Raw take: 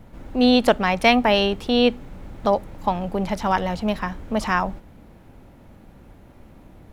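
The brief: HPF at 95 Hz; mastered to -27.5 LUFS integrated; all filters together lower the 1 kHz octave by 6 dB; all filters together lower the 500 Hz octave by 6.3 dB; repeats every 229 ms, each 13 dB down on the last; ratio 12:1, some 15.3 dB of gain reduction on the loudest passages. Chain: high-pass 95 Hz; peaking EQ 500 Hz -6 dB; peaking EQ 1 kHz -5.5 dB; compression 12:1, threshold -29 dBFS; feedback delay 229 ms, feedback 22%, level -13 dB; trim +7 dB

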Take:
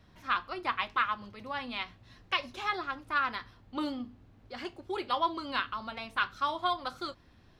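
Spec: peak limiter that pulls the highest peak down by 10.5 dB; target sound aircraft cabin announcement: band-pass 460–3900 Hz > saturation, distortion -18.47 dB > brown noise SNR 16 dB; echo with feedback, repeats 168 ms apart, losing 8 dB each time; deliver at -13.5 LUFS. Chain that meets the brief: peak limiter -24 dBFS; band-pass 460–3900 Hz; feedback delay 168 ms, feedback 40%, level -8 dB; saturation -27 dBFS; brown noise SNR 16 dB; trim +25.5 dB

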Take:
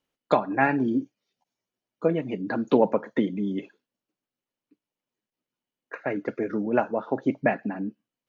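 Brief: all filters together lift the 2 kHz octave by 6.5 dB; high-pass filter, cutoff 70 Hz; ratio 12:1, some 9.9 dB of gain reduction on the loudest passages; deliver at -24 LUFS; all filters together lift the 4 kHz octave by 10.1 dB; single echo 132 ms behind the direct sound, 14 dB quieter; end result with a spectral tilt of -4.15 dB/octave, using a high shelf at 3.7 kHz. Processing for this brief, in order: high-pass 70 Hz; peaking EQ 2 kHz +5 dB; treble shelf 3.7 kHz +9 dB; peaking EQ 4 kHz +5.5 dB; compression 12:1, threshold -23 dBFS; delay 132 ms -14 dB; trim +6.5 dB

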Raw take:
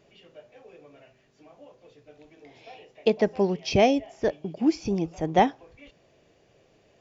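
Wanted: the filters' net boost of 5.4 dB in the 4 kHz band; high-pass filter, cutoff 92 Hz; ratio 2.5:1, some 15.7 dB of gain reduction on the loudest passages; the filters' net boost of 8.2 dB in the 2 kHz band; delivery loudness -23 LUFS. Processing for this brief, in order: high-pass 92 Hz; peaking EQ 2 kHz +8.5 dB; peaking EQ 4 kHz +4 dB; compression 2.5:1, threshold -38 dBFS; trim +16 dB

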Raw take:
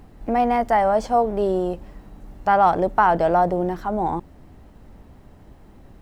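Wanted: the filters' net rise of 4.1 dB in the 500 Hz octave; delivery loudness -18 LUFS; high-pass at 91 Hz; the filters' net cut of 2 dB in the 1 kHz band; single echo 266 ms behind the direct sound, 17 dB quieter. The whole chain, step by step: high-pass 91 Hz; peaking EQ 500 Hz +8 dB; peaking EQ 1 kHz -7.5 dB; delay 266 ms -17 dB; trim +1 dB

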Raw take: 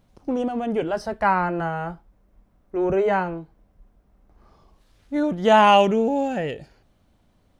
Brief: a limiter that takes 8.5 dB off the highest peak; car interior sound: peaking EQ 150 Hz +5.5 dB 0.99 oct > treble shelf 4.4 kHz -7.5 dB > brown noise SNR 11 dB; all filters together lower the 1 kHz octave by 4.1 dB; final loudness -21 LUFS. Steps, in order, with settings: peaking EQ 1 kHz -5 dB; peak limiter -14.5 dBFS; peaking EQ 150 Hz +5.5 dB 0.99 oct; treble shelf 4.4 kHz -7.5 dB; brown noise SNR 11 dB; trim +3.5 dB

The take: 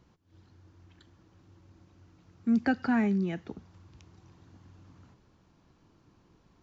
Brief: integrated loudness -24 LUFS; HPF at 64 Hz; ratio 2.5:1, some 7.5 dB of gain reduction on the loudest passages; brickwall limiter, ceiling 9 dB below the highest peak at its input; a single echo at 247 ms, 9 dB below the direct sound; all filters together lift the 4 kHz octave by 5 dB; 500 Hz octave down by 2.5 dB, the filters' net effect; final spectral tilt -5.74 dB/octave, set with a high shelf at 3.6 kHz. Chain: high-pass 64 Hz; peaking EQ 500 Hz -3.5 dB; treble shelf 3.6 kHz +4.5 dB; peaking EQ 4 kHz +4 dB; compression 2.5:1, threshold -34 dBFS; peak limiter -32.5 dBFS; delay 247 ms -9 dB; trim +19.5 dB

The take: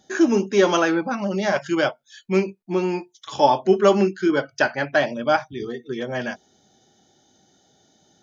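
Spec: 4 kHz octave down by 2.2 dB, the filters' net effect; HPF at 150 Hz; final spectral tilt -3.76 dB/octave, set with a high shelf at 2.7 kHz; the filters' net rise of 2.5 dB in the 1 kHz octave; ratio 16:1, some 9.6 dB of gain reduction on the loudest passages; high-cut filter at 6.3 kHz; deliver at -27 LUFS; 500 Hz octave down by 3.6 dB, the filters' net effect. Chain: high-pass 150 Hz; low-pass 6.3 kHz; peaking EQ 500 Hz -6.5 dB; peaking EQ 1 kHz +5 dB; treble shelf 2.7 kHz +6 dB; peaking EQ 4 kHz -8 dB; compression 16:1, threshold -19 dBFS; trim -0.5 dB

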